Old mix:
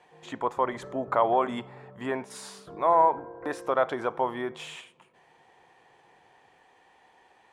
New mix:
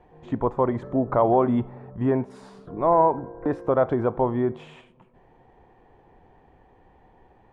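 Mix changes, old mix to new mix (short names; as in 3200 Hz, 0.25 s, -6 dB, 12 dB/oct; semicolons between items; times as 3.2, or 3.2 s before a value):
speech: add tilt -3.5 dB/oct; master: add tilt -2.5 dB/oct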